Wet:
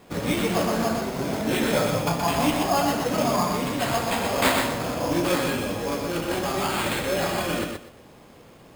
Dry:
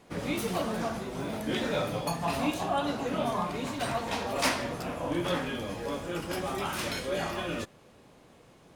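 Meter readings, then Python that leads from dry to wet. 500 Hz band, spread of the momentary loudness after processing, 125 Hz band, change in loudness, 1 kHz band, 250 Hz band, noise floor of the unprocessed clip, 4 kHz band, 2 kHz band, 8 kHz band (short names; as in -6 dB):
+7.0 dB, 5 LU, +7.5 dB, +7.5 dB, +7.0 dB, +7.5 dB, -57 dBFS, +7.0 dB, +7.0 dB, +9.0 dB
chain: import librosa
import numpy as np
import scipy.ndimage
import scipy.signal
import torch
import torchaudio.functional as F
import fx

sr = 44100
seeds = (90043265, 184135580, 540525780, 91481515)

y = fx.sample_hold(x, sr, seeds[0], rate_hz=5800.0, jitter_pct=0)
y = fx.echo_feedback(y, sr, ms=123, feedback_pct=21, wet_db=-4.5)
y = F.gain(torch.from_numpy(y), 6.0).numpy()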